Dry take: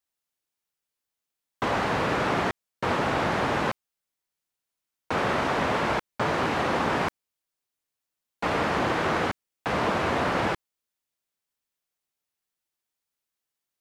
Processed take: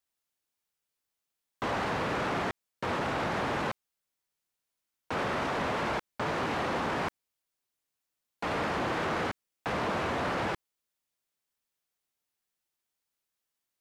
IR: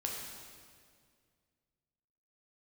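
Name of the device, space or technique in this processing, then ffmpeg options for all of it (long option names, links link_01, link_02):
soft clipper into limiter: -af "asoftclip=type=tanh:threshold=-18.5dB,alimiter=level_in=0.5dB:limit=-24dB:level=0:latency=1:release=49,volume=-0.5dB"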